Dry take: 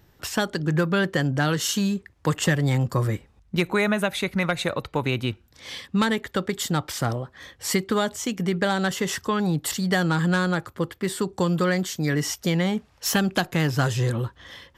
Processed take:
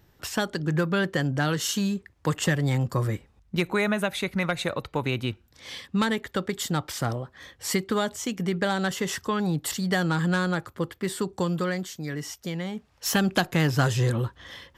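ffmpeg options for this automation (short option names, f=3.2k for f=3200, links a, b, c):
-af "volume=6.5dB,afade=t=out:st=11.27:d=0.77:silence=0.473151,afade=t=in:st=12.73:d=0.56:silence=0.354813"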